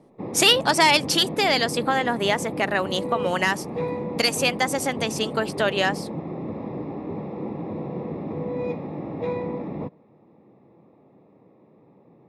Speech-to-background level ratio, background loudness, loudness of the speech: 9.5 dB, -31.5 LUFS, -22.0 LUFS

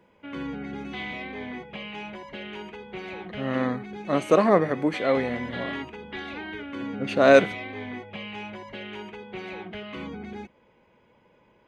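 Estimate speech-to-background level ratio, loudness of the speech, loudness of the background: 14.0 dB, -22.5 LUFS, -36.5 LUFS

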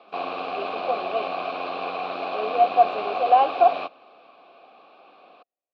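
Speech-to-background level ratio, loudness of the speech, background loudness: 7.5 dB, -22.0 LUFS, -29.5 LUFS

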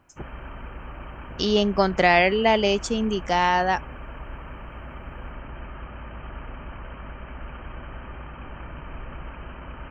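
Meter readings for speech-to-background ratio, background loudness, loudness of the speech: 18.5 dB, -40.0 LUFS, -21.5 LUFS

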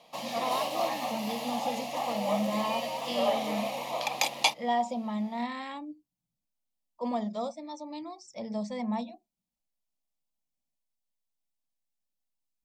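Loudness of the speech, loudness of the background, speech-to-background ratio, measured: -35.0 LUFS, -31.5 LUFS, -3.5 dB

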